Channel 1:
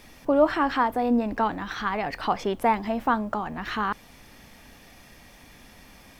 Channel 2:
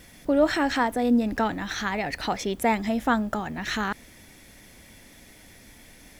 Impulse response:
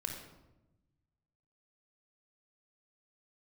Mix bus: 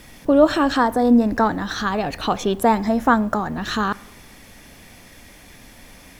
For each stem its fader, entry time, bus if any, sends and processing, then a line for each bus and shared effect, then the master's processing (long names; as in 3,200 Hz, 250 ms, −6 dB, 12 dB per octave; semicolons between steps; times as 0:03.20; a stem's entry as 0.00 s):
+1.0 dB, 0.00 s, send −14 dB, no processing
+2.0 dB, 0.00 s, no send, no processing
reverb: on, RT60 1.0 s, pre-delay 26 ms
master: no processing